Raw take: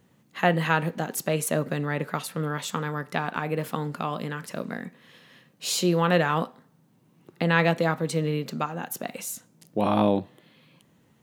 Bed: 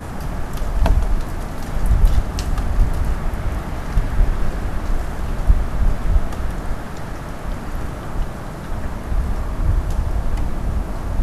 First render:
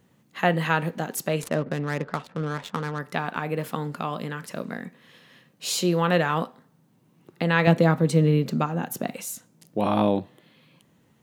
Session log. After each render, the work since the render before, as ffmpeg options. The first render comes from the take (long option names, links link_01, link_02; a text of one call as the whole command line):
ffmpeg -i in.wav -filter_complex "[0:a]asettb=1/sr,asplit=3[link_01][link_02][link_03];[link_01]atrim=end=1.424[link_04];[link_02]atrim=start=1.42:end=2.99,asetpts=PTS-STARTPTS,afade=type=in:duration=0.004:curve=qsin,afade=type=out:start_time=1.566:duration=0.004:curve=qsin,adynamicsmooth=sensitivity=6:basefreq=760[link_05];[link_03]atrim=start=2.986[link_06];[link_04][link_05]acrossfade=duration=0.004:curve1=hsin:curve2=qsin[link_07];[link_07][link_06]acrossfade=duration=0.004:curve1=qsin:curve2=hsin,asettb=1/sr,asplit=3[link_08][link_09][link_10];[link_08]atrim=end=7.674[link_11];[link_09]atrim=start=7.67:end=9.14,asetpts=PTS-STARTPTS,afade=type=in:duration=0.004:curve=qsin,afade=type=out:start_time=1.466:duration=0.004:curve=qsin,lowshelf=frequency=440:gain=9.5[link_12];[link_10]atrim=start=9.136[link_13];[link_11][link_12]acrossfade=duration=0.004:curve1=hsin:curve2=qsin[link_14];[link_14][link_13]acrossfade=duration=0.004:curve1=qsin:curve2=hsin" out.wav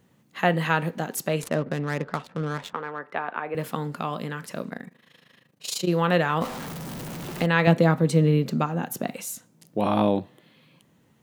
ffmpeg -i in.wav -filter_complex "[0:a]asettb=1/sr,asplit=3[link_01][link_02][link_03];[link_01]atrim=end=2.734[link_04];[link_02]atrim=start=2.73:end=3.55,asetpts=PTS-STARTPTS,afade=type=in:duration=0.004:curve=qsin,afade=type=out:start_time=0.816:duration=0.004:curve=qsin,acrossover=split=310 2700:gain=0.112 1 0.0708[link_05][link_06][link_07];[link_05][link_06][link_07]amix=inputs=3:normalize=0[link_08];[link_03]atrim=start=3.546[link_09];[link_04][link_08]acrossfade=duration=0.004:curve1=hsin:curve2=qsin[link_10];[link_10][link_09]acrossfade=duration=0.004:curve1=qsin:curve2=hsin,asettb=1/sr,asplit=3[link_11][link_12][link_13];[link_11]atrim=end=4.694[link_14];[link_12]atrim=start=4.69:end=5.89,asetpts=PTS-STARTPTS,afade=type=in:duration=0.004:curve=qsin,afade=type=out:start_time=1.196:duration=0.004:curve=qsin,tremolo=f=26:d=0.824[link_15];[link_13]atrim=start=5.886[link_16];[link_14][link_15]acrossfade=duration=0.004:curve1=hsin:curve2=qsin[link_17];[link_17][link_16]acrossfade=duration=0.004:curve1=qsin:curve2=hsin,asettb=1/sr,asplit=3[link_18][link_19][link_20];[link_18]atrim=end=6.414[link_21];[link_19]atrim=start=6.41:end=7.46,asetpts=PTS-STARTPTS,afade=type=in:duration=0.004:curve=qsin,afade=type=out:start_time=1.046:duration=0.004:curve=qsin,aeval=exprs='val(0)+0.5*0.0335*sgn(val(0))':channel_layout=same[link_22];[link_20]atrim=start=7.456[link_23];[link_21][link_22]acrossfade=duration=0.004:curve1=hsin:curve2=qsin[link_24];[link_24][link_23]acrossfade=duration=0.004:curve1=qsin:curve2=hsin" out.wav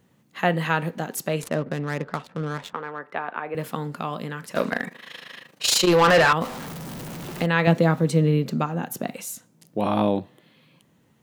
ffmpeg -i in.wav -filter_complex "[0:a]asettb=1/sr,asplit=3[link_01][link_02][link_03];[link_01]atrim=end=4.554[link_04];[link_02]atrim=start=4.55:end=6.33,asetpts=PTS-STARTPTS,afade=type=in:duration=0.004:curve=qsin,afade=type=out:start_time=1.776:duration=0.004:curve=qsin,asplit=2[link_05][link_06];[link_06]highpass=frequency=720:poles=1,volume=23dB,asoftclip=type=tanh:threshold=-8dB[link_07];[link_05][link_07]amix=inputs=2:normalize=0,lowpass=frequency=6400:poles=1,volume=-6dB[link_08];[link_03]atrim=start=6.326[link_09];[link_04][link_08]acrossfade=duration=0.004:curve1=hsin:curve2=qsin[link_10];[link_10][link_09]acrossfade=duration=0.004:curve1=qsin:curve2=hsin,asettb=1/sr,asplit=3[link_11][link_12][link_13];[link_11]atrim=end=7.714[link_14];[link_12]atrim=start=7.71:end=8.12,asetpts=PTS-STARTPTS,afade=type=in:duration=0.004:curve=qsin,afade=type=out:start_time=0.406:duration=0.004:curve=qsin,aeval=exprs='val(0)*gte(abs(val(0)),0.00596)':channel_layout=same[link_15];[link_13]atrim=start=8.116[link_16];[link_14][link_15]acrossfade=duration=0.004:curve1=hsin:curve2=qsin[link_17];[link_17][link_16]acrossfade=duration=0.004:curve1=qsin:curve2=hsin" out.wav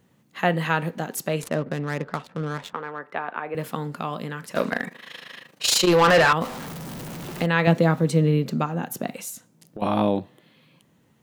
ffmpeg -i in.wav -filter_complex "[0:a]asettb=1/sr,asplit=3[link_01][link_02][link_03];[link_01]atrim=end=9.294[link_04];[link_02]atrim=start=9.29:end=9.82,asetpts=PTS-STARTPTS,afade=type=in:duration=0.004:curve=qsin,afade=type=out:start_time=0.526:duration=0.004:curve=qsin,acompressor=threshold=-32dB:ratio=6:attack=3.2:release=140:knee=1:detection=peak[link_05];[link_03]atrim=start=9.816[link_06];[link_04][link_05]acrossfade=duration=0.004:curve1=hsin:curve2=qsin[link_07];[link_07][link_06]acrossfade=duration=0.004:curve1=qsin:curve2=hsin" out.wav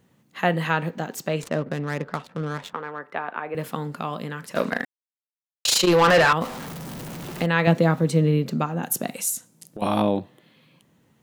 ffmpeg -i in.wav -filter_complex "[0:a]asettb=1/sr,asplit=3[link_01][link_02][link_03];[link_01]atrim=end=0.704[link_04];[link_02]atrim=start=0.7:end=1.55,asetpts=PTS-STARTPTS,afade=type=in:duration=0.004:curve=qsin,afade=type=out:start_time=0.846:duration=0.004:curve=qsin,equalizer=frequency=11000:width=2.8:gain=-14[link_05];[link_03]atrim=start=1.546[link_06];[link_04][link_05]acrossfade=duration=0.004:curve1=hsin:curve2=qsin[link_07];[link_07][link_06]acrossfade=duration=0.004:curve1=qsin:curve2=hsin,asettb=1/sr,asplit=3[link_08][link_09][link_10];[link_08]atrim=end=8.834[link_11];[link_09]atrim=start=8.83:end=10.02,asetpts=PTS-STARTPTS,afade=type=in:duration=0.004:curve=qsin,afade=type=out:start_time=1.186:duration=0.004:curve=qsin,equalizer=frequency=9700:width_type=o:width=1.7:gain=11[link_12];[link_10]atrim=start=10.016[link_13];[link_11][link_12]acrossfade=duration=0.004:curve1=hsin:curve2=qsin[link_14];[link_14][link_13]acrossfade=duration=0.004:curve1=qsin:curve2=hsin,asplit=3[link_15][link_16][link_17];[link_15]atrim=end=4.85,asetpts=PTS-STARTPTS,afade=type=out:start_time=4.846:duration=0.004:curve=hsin[link_18];[link_16]atrim=start=4.85:end=5.65,asetpts=PTS-STARTPTS,volume=0[link_19];[link_17]atrim=start=5.65,asetpts=PTS-STARTPTS,afade=type=in:duration=0.004:curve=hsin[link_20];[link_18][link_19][link_20]concat=n=3:v=0:a=1" out.wav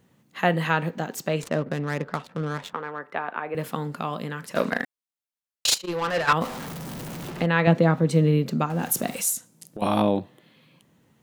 ffmpeg -i in.wav -filter_complex "[0:a]asplit=3[link_01][link_02][link_03];[link_01]afade=type=out:start_time=5.74:duration=0.02[link_04];[link_02]agate=range=-33dB:threshold=-9dB:ratio=3:release=100:detection=peak,afade=type=in:start_time=5.74:duration=0.02,afade=type=out:start_time=6.27:duration=0.02[link_05];[link_03]afade=type=in:start_time=6.27:duration=0.02[link_06];[link_04][link_05][link_06]amix=inputs=3:normalize=0,asettb=1/sr,asplit=3[link_07][link_08][link_09];[link_07]atrim=end=7.304[link_10];[link_08]atrim=start=7.3:end=8.11,asetpts=PTS-STARTPTS,afade=type=in:duration=0.004:curve=qsin,afade=type=out:start_time=0.806:duration=0.004:curve=qsin,highshelf=frequency=6000:gain=-11.5[link_11];[link_09]atrim=start=8.106[link_12];[link_10][link_11]acrossfade=duration=0.004:curve1=hsin:curve2=qsin[link_13];[link_13][link_12]acrossfade=duration=0.004:curve1=qsin:curve2=hsin,asettb=1/sr,asplit=3[link_14][link_15][link_16];[link_14]atrim=end=8.704[link_17];[link_15]atrim=start=8.7:end=9.33,asetpts=PTS-STARTPTS,afade=type=in:duration=0.004:curve=qsin,afade=type=out:start_time=0.626:duration=0.004:curve=qsin,aeval=exprs='val(0)+0.5*0.015*sgn(val(0))':channel_layout=same[link_18];[link_16]atrim=start=9.326[link_19];[link_17][link_18]acrossfade=duration=0.004:curve1=hsin:curve2=qsin[link_20];[link_20][link_19]acrossfade=duration=0.004:curve1=qsin:curve2=hsin" out.wav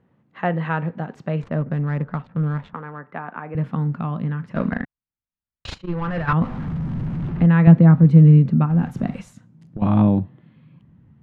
ffmpeg -i in.wav -af "asubboost=boost=9:cutoff=160,lowpass=1700" out.wav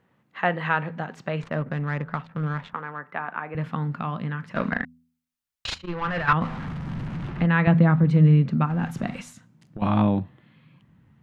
ffmpeg -i in.wav -af "tiltshelf=frequency=780:gain=-6,bandreject=frequency=82.01:width_type=h:width=4,bandreject=frequency=164.02:width_type=h:width=4,bandreject=frequency=246.03:width_type=h:width=4" out.wav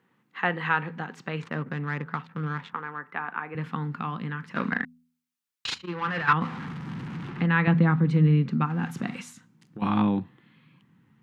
ffmpeg -i in.wav -af "highpass=170,equalizer=frequency=620:width=3.8:gain=-13" out.wav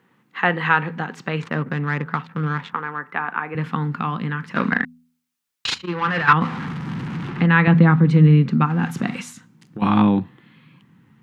ffmpeg -i in.wav -af "volume=7.5dB,alimiter=limit=-3dB:level=0:latency=1" out.wav